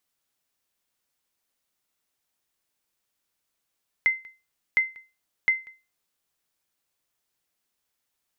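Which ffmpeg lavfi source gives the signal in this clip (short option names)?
-f lavfi -i "aevalsrc='0.224*(sin(2*PI*2070*mod(t,0.71))*exp(-6.91*mod(t,0.71)/0.28)+0.0596*sin(2*PI*2070*max(mod(t,0.71)-0.19,0))*exp(-6.91*max(mod(t,0.71)-0.19,0)/0.28))':d=2.13:s=44100"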